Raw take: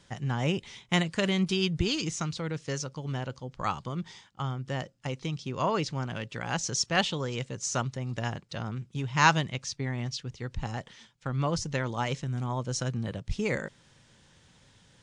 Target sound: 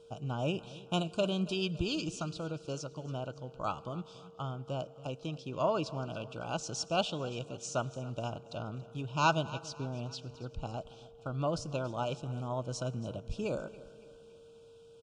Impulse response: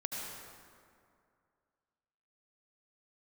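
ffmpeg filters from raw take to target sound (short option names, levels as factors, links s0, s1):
-filter_complex "[0:a]asuperstop=centerf=1900:order=20:qfactor=2.2,equalizer=f=1900:t=o:w=0.69:g=4,aecho=1:1:280|560|840|1120:0.119|0.057|0.0274|0.0131,asplit=2[s0][s1];[1:a]atrim=start_sample=2205[s2];[s1][s2]afir=irnorm=-1:irlink=0,volume=0.0944[s3];[s0][s3]amix=inputs=2:normalize=0,aeval=exprs='val(0)+0.00398*sin(2*PI*460*n/s)':c=same,equalizer=f=315:t=o:w=0.33:g=5,equalizer=f=630:t=o:w=0.33:g=11,equalizer=f=6300:t=o:w=0.33:g=-4,volume=0.422"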